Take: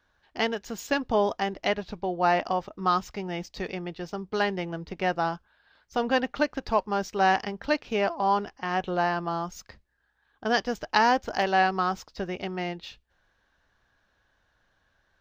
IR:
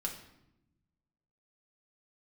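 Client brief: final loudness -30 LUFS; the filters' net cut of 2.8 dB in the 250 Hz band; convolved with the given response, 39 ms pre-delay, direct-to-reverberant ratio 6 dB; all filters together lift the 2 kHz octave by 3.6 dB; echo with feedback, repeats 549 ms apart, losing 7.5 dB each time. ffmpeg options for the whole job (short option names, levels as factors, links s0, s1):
-filter_complex "[0:a]equalizer=f=250:t=o:g=-4,equalizer=f=2000:t=o:g=4.5,aecho=1:1:549|1098|1647|2196|2745:0.422|0.177|0.0744|0.0312|0.0131,asplit=2[s0][s1];[1:a]atrim=start_sample=2205,adelay=39[s2];[s1][s2]afir=irnorm=-1:irlink=0,volume=0.447[s3];[s0][s3]amix=inputs=2:normalize=0,volume=0.596"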